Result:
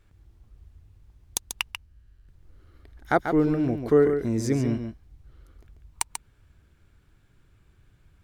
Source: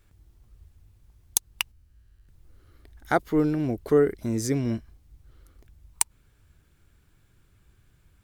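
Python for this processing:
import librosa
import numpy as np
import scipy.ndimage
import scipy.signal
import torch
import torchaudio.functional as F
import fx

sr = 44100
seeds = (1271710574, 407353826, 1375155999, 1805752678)

p1 = fx.lowpass(x, sr, hz=4000.0, slope=6)
p2 = p1 + fx.echo_single(p1, sr, ms=140, db=-7.5, dry=0)
y = p2 * librosa.db_to_amplitude(1.0)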